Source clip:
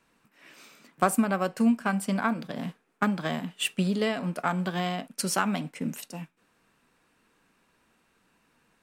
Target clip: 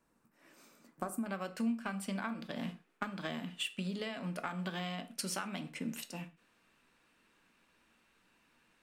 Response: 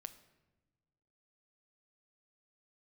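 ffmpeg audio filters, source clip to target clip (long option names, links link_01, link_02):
-filter_complex "[0:a]asetnsamples=nb_out_samples=441:pad=0,asendcmd='1.26 equalizer g 5.5',equalizer=frequency=2900:width=0.78:gain=-10,acompressor=threshold=-30dB:ratio=6[link_01];[1:a]atrim=start_sample=2205,afade=type=out:start_time=0.32:duration=0.01,atrim=end_sample=14553,asetrate=88200,aresample=44100[link_02];[link_01][link_02]afir=irnorm=-1:irlink=0,volume=6dB"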